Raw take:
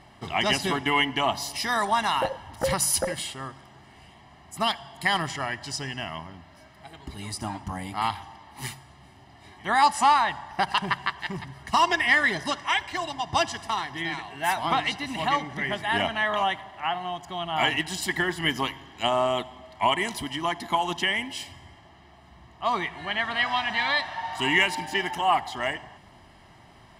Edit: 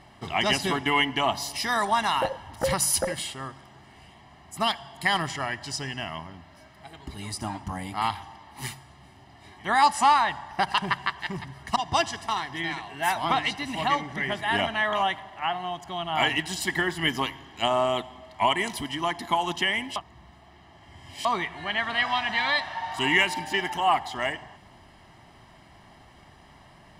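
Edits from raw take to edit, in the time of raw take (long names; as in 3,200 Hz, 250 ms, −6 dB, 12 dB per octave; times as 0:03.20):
0:11.76–0:13.17: remove
0:21.37–0:22.66: reverse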